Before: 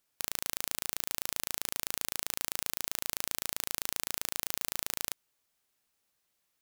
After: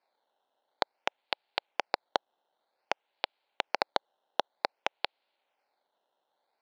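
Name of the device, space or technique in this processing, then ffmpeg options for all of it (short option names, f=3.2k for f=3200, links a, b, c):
circuit-bent sampling toy: -af "acrusher=samples=13:mix=1:aa=0.000001:lfo=1:lforange=13:lforate=0.53,highpass=570,equalizer=f=570:t=q:w=4:g=4,equalizer=f=820:t=q:w=4:g=6,equalizer=f=1.2k:t=q:w=4:g=-8,equalizer=f=1.8k:t=q:w=4:g=-6,equalizer=f=4.3k:t=q:w=4:g=6,lowpass=f=4.4k:w=0.5412,lowpass=f=4.4k:w=1.3066"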